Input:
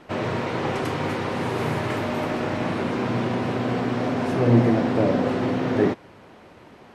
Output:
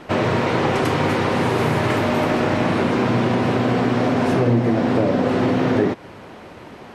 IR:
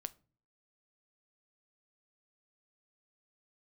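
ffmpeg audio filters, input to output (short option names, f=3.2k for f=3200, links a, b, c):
-af "acompressor=threshold=-23dB:ratio=5,volume=8.5dB"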